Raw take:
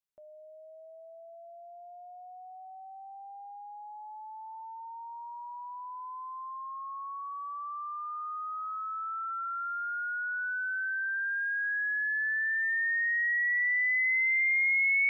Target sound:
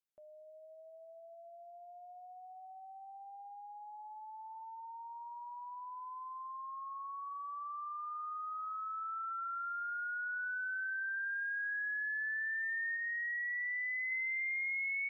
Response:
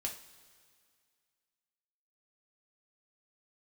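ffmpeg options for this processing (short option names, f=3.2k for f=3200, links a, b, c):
-filter_complex "[0:a]asettb=1/sr,asplit=3[a][b][c];[a]atrim=end=12.964[d];[b]atrim=start=12.96:end=14.12,asetpts=PTS-STARTPTS,afade=t=in:d=0.004:c=qsin,afade=t=out:st=1.156:d=0.004:c=qsin,lowpass=f=1.8k:p=1[e];[c]atrim=start=14.116[f];[d][e]acrossfade=d=0.004:c1=hsin:c2=qsin[g];[g][f]acrossfade=d=0.004:c1=qsin:c2=hsin,acompressor=threshold=-31dB:ratio=6,asplit=2[h][i];[i]aecho=0:1:235:0.0944[j];[h][j]amix=inputs=2:normalize=0,volume=-4.5dB"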